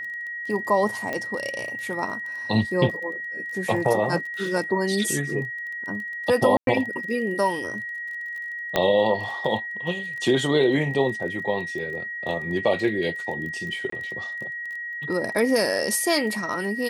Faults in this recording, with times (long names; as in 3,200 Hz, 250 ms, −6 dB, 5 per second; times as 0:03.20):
surface crackle 21 per second −33 dBFS
whistle 1,900 Hz −30 dBFS
0:01.13: click −15 dBFS
0:06.57–0:06.67: drop-out 102 ms
0:08.76: click −7 dBFS
0:13.90–0:13.92: drop-out 24 ms